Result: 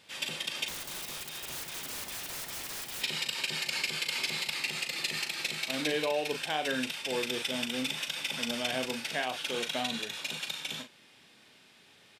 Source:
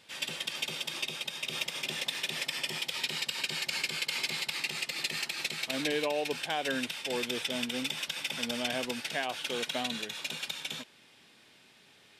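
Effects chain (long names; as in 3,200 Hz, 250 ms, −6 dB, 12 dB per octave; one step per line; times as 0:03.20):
0:00.68–0:03.02: wrap-around overflow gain 34.5 dB
double-tracking delay 39 ms −8 dB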